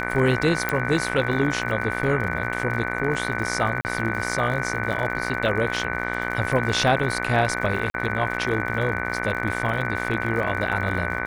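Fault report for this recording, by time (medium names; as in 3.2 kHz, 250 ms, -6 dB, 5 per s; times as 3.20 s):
buzz 60 Hz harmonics 39 -29 dBFS
crackle 81 per s -31 dBFS
whine 1.5 kHz -31 dBFS
0.69 s: pop
3.81–3.85 s: dropout 39 ms
7.90–7.94 s: dropout 42 ms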